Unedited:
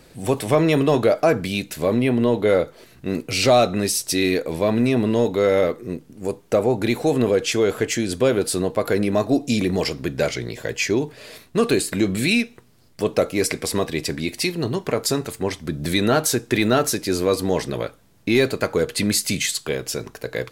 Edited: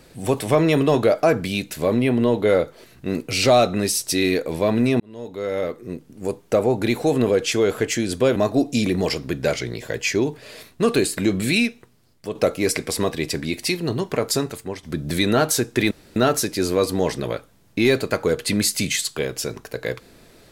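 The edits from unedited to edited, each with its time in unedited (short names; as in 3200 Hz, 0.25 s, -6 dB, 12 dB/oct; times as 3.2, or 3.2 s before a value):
5–6.24 fade in
8.36–9.11 cut
12.3–13.1 fade out, to -8 dB
15.12–15.58 fade out linear, to -10.5 dB
16.66 insert room tone 0.25 s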